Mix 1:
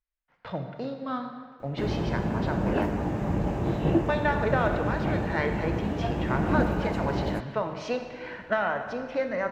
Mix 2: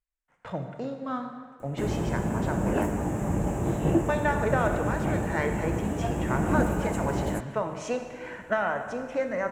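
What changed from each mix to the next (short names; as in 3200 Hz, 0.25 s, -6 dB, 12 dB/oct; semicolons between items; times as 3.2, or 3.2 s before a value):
master: add resonant high shelf 6000 Hz +10.5 dB, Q 3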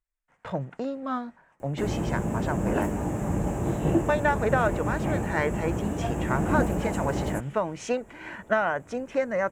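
speech +4.5 dB; reverb: off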